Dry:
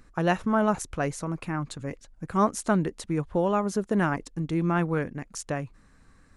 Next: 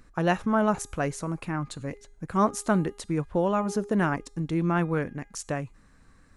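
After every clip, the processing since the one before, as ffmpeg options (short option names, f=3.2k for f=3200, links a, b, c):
-af "bandreject=f=408.8:t=h:w=4,bandreject=f=817.6:t=h:w=4,bandreject=f=1.2264k:t=h:w=4,bandreject=f=1.6352k:t=h:w=4,bandreject=f=2.044k:t=h:w=4,bandreject=f=2.4528k:t=h:w=4,bandreject=f=2.8616k:t=h:w=4,bandreject=f=3.2704k:t=h:w=4,bandreject=f=3.6792k:t=h:w=4,bandreject=f=4.088k:t=h:w=4,bandreject=f=4.4968k:t=h:w=4,bandreject=f=4.9056k:t=h:w=4,bandreject=f=5.3144k:t=h:w=4,bandreject=f=5.7232k:t=h:w=4,bandreject=f=6.132k:t=h:w=4,bandreject=f=6.5408k:t=h:w=4,bandreject=f=6.9496k:t=h:w=4,bandreject=f=7.3584k:t=h:w=4,bandreject=f=7.7672k:t=h:w=4,bandreject=f=8.176k:t=h:w=4,bandreject=f=8.5848k:t=h:w=4,bandreject=f=8.9936k:t=h:w=4,bandreject=f=9.4024k:t=h:w=4,bandreject=f=9.8112k:t=h:w=4,bandreject=f=10.22k:t=h:w=4,bandreject=f=10.6288k:t=h:w=4,bandreject=f=11.0376k:t=h:w=4,bandreject=f=11.4464k:t=h:w=4,bandreject=f=11.8552k:t=h:w=4,bandreject=f=12.264k:t=h:w=4,bandreject=f=12.6728k:t=h:w=4"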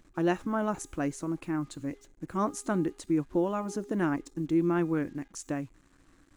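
-af "acrusher=bits=8:mix=0:aa=0.5,superequalizer=6b=3.16:15b=1.41,volume=-6.5dB"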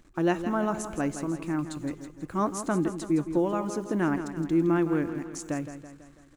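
-af "aecho=1:1:165|330|495|660|825|990:0.299|0.161|0.0871|0.047|0.0254|0.0137,volume=2dB"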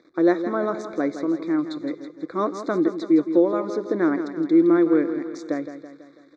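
-af "asuperstop=centerf=2900:order=12:qfactor=2.4,highpass=320,equalizer=f=320:t=q:w=4:g=6,equalizer=f=490:t=q:w=4:g=7,equalizer=f=860:t=q:w=4:g=-9,equalizer=f=1.6k:t=q:w=4:g=-3,equalizer=f=3.4k:t=q:w=4:g=9,lowpass=f=4.5k:w=0.5412,lowpass=f=4.5k:w=1.3066,volume=5dB"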